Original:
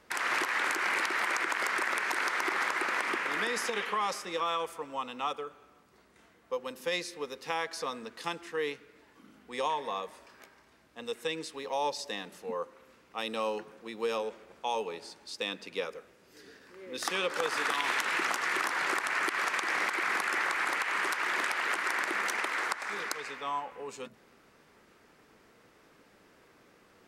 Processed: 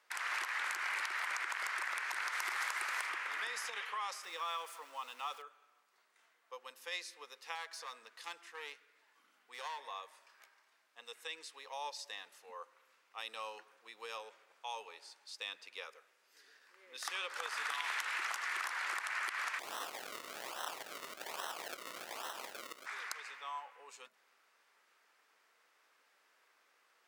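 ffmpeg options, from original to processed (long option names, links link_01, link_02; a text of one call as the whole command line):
ffmpeg -i in.wav -filter_complex "[0:a]asettb=1/sr,asplit=3[link_01][link_02][link_03];[link_01]atrim=end=2.324[link_04];[link_02]atrim=start=2.32:end=3.07,asetpts=PTS-STARTPTS,afade=type=in:duration=0.004:curve=qsin,afade=type=out:start_time=0.746:duration=0.004:curve=qsin,highshelf=frequency=5600:gain=9.5[link_05];[link_03]atrim=start=3.066[link_06];[link_04][link_05]acrossfade=duration=0.004:curve1=hsin:curve2=qsin[link_07];[link_07][link_06]acrossfade=duration=0.004:curve1=qsin:curve2=hsin,asettb=1/sr,asplit=3[link_08][link_09][link_10];[link_08]atrim=end=4.234[link_11];[link_09]atrim=start=4.23:end=5.42,asetpts=PTS-STARTPTS,afade=type=in:duration=0.004:curve=qsin,afade=type=out:start_time=1.186:duration=0.004:curve=qsin,aeval=exprs='val(0)+0.5*0.00708*sgn(val(0))':channel_layout=same[link_12];[link_10]atrim=start=5.416[link_13];[link_11][link_12]acrossfade=duration=0.004:curve1=hsin:curve2=qsin[link_14];[link_14][link_13]acrossfade=duration=0.004:curve1=qsin:curve2=hsin,asettb=1/sr,asplit=3[link_15][link_16][link_17];[link_15]atrim=end=7.554[link_18];[link_16]atrim=start=7.55:end=9.8,asetpts=PTS-STARTPTS,afade=type=in:duration=0.004:curve=qsin,afade=type=out:start_time=2.246:duration=0.004:curve=qsin,aeval=exprs='clip(val(0),-1,0.0178)':channel_layout=same[link_19];[link_17]atrim=start=9.796[link_20];[link_18][link_19]acrossfade=duration=0.004:curve1=hsin:curve2=qsin[link_21];[link_21][link_20]acrossfade=duration=0.004:curve1=qsin:curve2=hsin,asplit=3[link_22][link_23][link_24];[link_22]afade=type=out:start_time=19.58:duration=0.02[link_25];[link_23]acrusher=samples=37:mix=1:aa=0.000001:lfo=1:lforange=37:lforate=1.2,afade=type=in:start_time=19.58:duration=0.02,afade=type=out:start_time=22.85:duration=0.02[link_26];[link_24]afade=type=in:start_time=22.85:duration=0.02[link_27];[link_25][link_26][link_27]amix=inputs=3:normalize=0,highpass=910,volume=-7dB" out.wav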